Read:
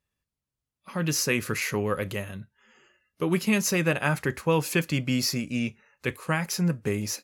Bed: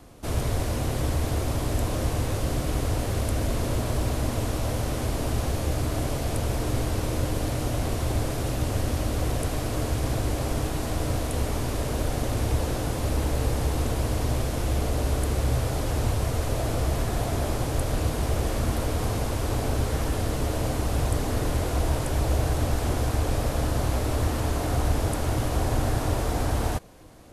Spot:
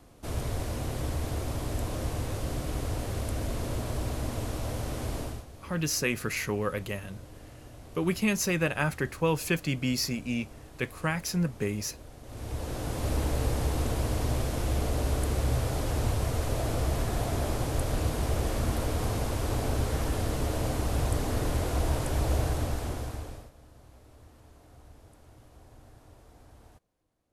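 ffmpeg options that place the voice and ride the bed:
-filter_complex "[0:a]adelay=4750,volume=-3dB[a];[1:a]volume=12dB,afade=t=out:st=5.18:d=0.27:silence=0.177828,afade=t=in:st=12.23:d=0.89:silence=0.125893,afade=t=out:st=22.38:d=1.13:silence=0.0501187[b];[a][b]amix=inputs=2:normalize=0"

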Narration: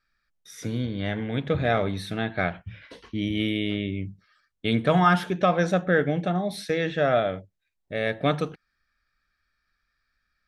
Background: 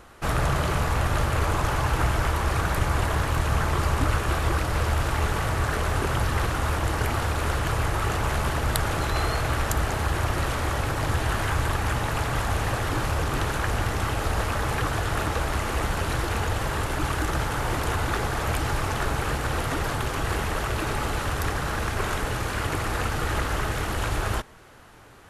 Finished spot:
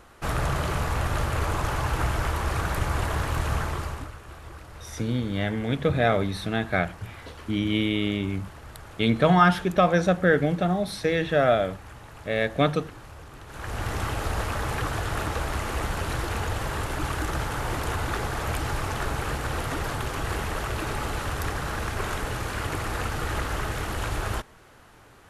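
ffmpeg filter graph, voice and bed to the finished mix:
-filter_complex "[0:a]adelay=4350,volume=1.5dB[a];[1:a]volume=13.5dB,afade=t=out:st=3.52:d=0.6:silence=0.158489,afade=t=in:st=13.47:d=0.47:silence=0.158489[b];[a][b]amix=inputs=2:normalize=0"

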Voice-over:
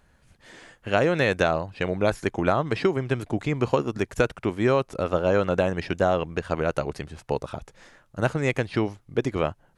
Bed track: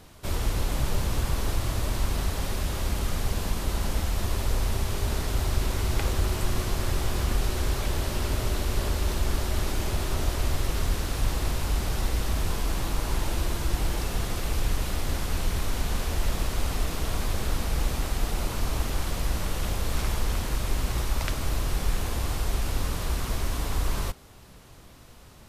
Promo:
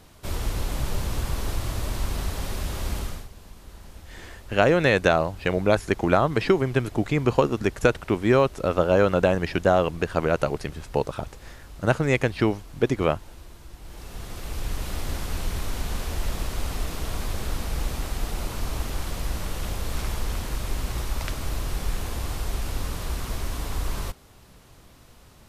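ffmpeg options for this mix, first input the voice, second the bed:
-filter_complex "[0:a]adelay=3650,volume=2.5dB[a];[1:a]volume=15dB,afade=t=out:st=2.97:d=0.31:silence=0.149624,afade=t=in:st=13.81:d=1.17:silence=0.158489[b];[a][b]amix=inputs=2:normalize=0"

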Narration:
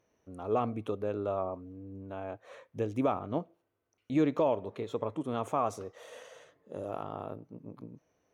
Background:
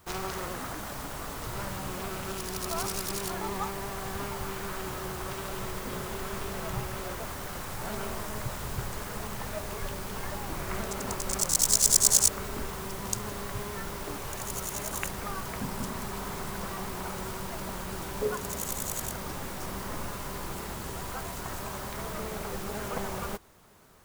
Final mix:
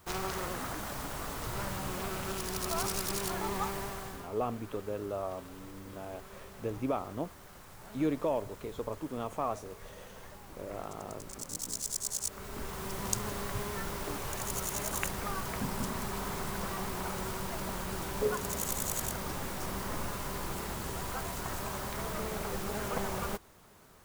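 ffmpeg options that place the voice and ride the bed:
-filter_complex "[0:a]adelay=3850,volume=-3.5dB[a];[1:a]volume=13dB,afade=t=out:st=3.76:d=0.52:silence=0.211349,afade=t=in:st=12.21:d=0.8:silence=0.199526[b];[a][b]amix=inputs=2:normalize=0"

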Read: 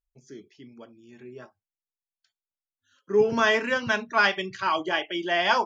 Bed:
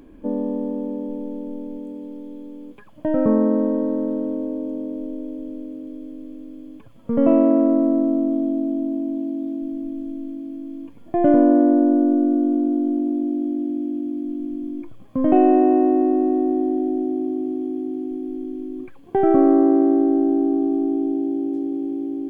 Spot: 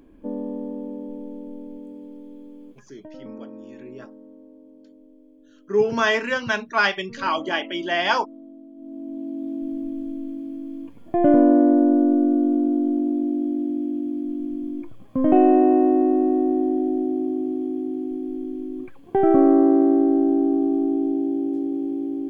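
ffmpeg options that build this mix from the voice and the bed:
-filter_complex "[0:a]adelay=2600,volume=1.5dB[a];[1:a]volume=15.5dB,afade=t=out:st=2.71:d=0.38:silence=0.158489,afade=t=in:st=8.75:d=0.96:silence=0.0891251[b];[a][b]amix=inputs=2:normalize=0"

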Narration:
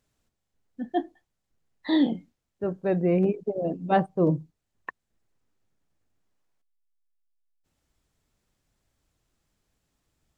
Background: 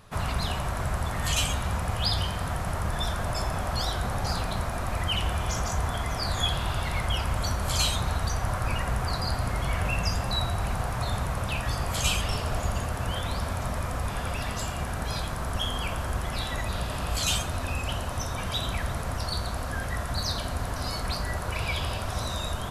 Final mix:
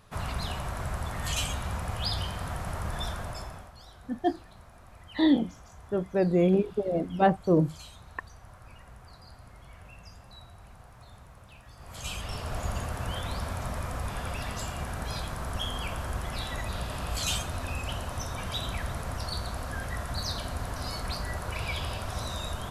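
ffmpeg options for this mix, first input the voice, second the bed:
-filter_complex "[0:a]adelay=3300,volume=0dB[a];[1:a]volume=14dB,afade=t=out:st=3.05:d=0.67:silence=0.133352,afade=t=in:st=11.76:d=0.95:silence=0.11885[b];[a][b]amix=inputs=2:normalize=0"

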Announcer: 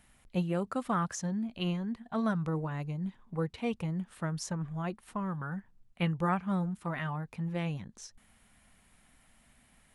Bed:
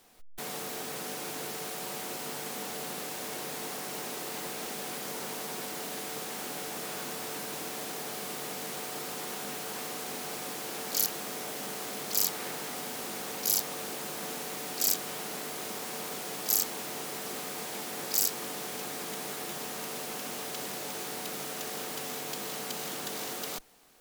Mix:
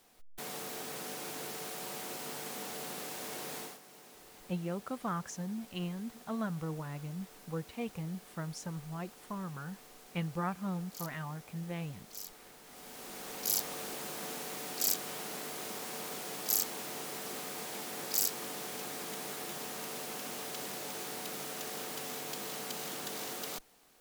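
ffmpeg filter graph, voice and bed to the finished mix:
-filter_complex "[0:a]adelay=4150,volume=-5.5dB[a];[1:a]volume=10.5dB,afade=t=out:st=3.58:d=0.21:silence=0.199526,afade=t=in:st=12.64:d=0.96:silence=0.188365[b];[a][b]amix=inputs=2:normalize=0"

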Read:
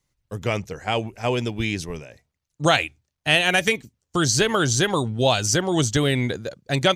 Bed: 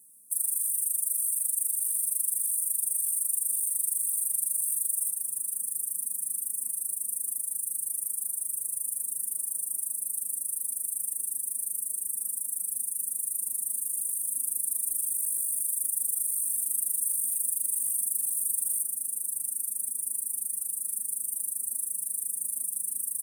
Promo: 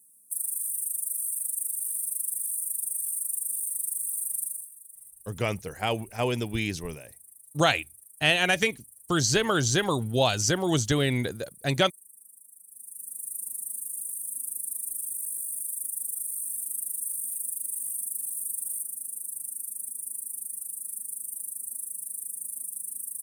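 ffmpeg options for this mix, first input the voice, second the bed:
-filter_complex "[0:a]adelay=4950,volume=-4dB[a];[1:a]volume=13.5dB,afade=t=out:st=4.43:d=0.26:silence=0.133352,afade=t=in:st=12.68:d=0.67:silence=0.158489[b];[a][b]amix=inputs=2:normalize=0"

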